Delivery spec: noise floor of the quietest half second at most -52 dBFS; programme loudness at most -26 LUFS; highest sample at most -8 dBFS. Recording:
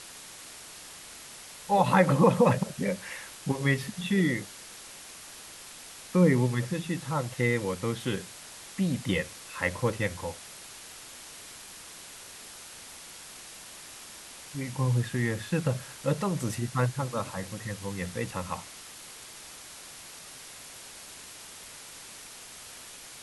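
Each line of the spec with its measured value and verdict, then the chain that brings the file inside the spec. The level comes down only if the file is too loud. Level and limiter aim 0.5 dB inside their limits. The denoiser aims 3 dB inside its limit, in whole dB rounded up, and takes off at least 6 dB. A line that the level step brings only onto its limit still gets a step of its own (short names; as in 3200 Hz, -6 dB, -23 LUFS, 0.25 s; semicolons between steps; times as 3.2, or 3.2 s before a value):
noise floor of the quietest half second -46 dBFS: fail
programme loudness -28.5 LUFS: OK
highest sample -9.0 dBFS: OK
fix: denoiser 9 dB, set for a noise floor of -46 dBFS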